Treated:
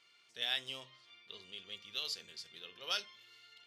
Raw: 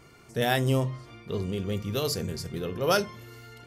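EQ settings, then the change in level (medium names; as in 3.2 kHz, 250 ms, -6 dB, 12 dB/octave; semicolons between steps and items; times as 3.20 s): band-pass filter 3.4 kHz, Q 2.7; 0.0 dB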